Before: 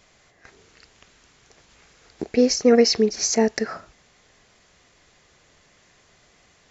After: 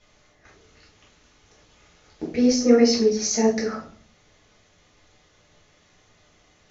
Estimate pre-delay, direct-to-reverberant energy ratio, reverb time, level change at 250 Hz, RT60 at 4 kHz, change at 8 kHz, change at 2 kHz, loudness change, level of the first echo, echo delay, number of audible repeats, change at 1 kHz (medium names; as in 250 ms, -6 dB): 3 ms, -5.5 dB, 0.50 s, +2.0 dB, 0.35 s, no reading, -3.0 dB, -0.5 dB, no echo, no echo, no echo, -1.5 dB